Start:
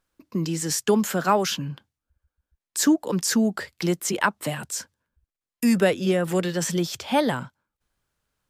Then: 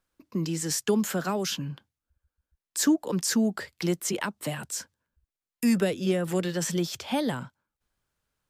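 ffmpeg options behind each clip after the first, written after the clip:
ffmpeg -i in.wav -filter_complex "[0:a]acrossover=split=450|3000[link_01][link_02][link_03];[link_02]acompressor=threshold=-28dB:ratio=6[link_04];[link_01][link_04][link_03]amix=inputs=3:normalize=0,volume=-3dB" out.wav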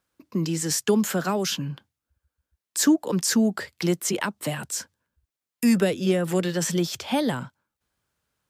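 ffmpeg -i in.wav -af "highpass=62,volume=3.5dB" out.wav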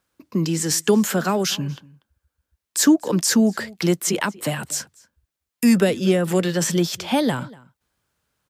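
ffmpeg -i in.wav -filter_complex "[0:a]asplit=2[link_01][link_02];[link_02]adelay=239.1,volume=-22dB,highshelf=frequency=4000:gain=-5.38[link_03];[link_01][link_03]amix=inputs=2:normalize=0,volume=4dB" out.wav

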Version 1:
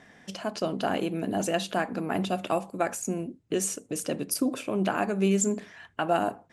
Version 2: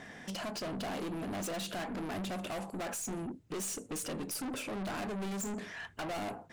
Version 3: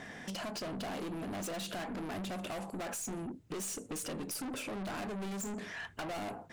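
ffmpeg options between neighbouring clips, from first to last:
ffmpeg -i in.wav -filter_complex "[0:a]asplit=2[link_01][link_02];[link_02]acompressor=threshold=-34dB:ratio=6,volume=-1dB[link_03];[link_01][link_03]amix=inputs=2:normalize=0,aeval=exprs='(tanh(63.1*val(0)+0.1)-tanh(0.1))/63.1':channel_layout=same" out.wav
ffmpeg -i in.wav -af "acompressor=threshold=-40dB:ratio=6,volume=2dB" out.wav

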